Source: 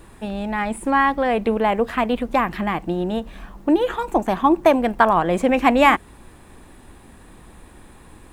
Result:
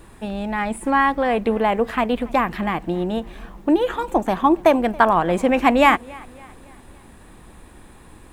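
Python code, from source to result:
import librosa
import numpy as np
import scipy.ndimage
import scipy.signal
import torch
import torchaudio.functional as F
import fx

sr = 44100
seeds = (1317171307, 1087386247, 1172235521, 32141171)

y = fx.echo_warbled(x, sr, ms=280, feedback_pct=47, rate_hz=2.8, cents=66, wet_db=-24.0)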